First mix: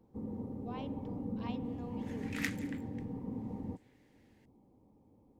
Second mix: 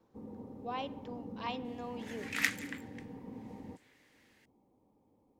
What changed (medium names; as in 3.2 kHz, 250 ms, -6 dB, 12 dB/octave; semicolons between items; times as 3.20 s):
speech +9.5 dB; second sound +7.5 dB; master: add bass shelf 290 Hz -10.5 dB